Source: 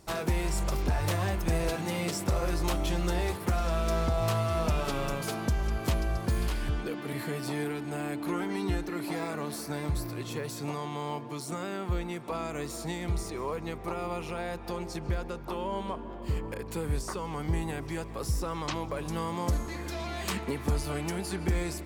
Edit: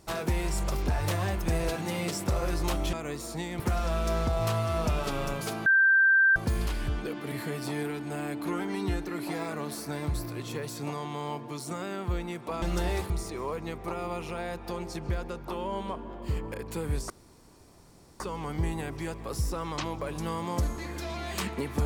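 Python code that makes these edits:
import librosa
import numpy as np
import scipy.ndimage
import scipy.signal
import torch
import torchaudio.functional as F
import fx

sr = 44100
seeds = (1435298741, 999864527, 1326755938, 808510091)

y = fx.edit(x, sr, fx.swap(start_s=2.93, length_s=0.48, other_s=12.43, other_length_s=0.67),
    fx.bleep(start_s=5.47, length_s=0.7, hz=1570.0, db=-17.5),
    fx.insert_room_tone(at_s=17.1, length_s=1.1), tone=tone)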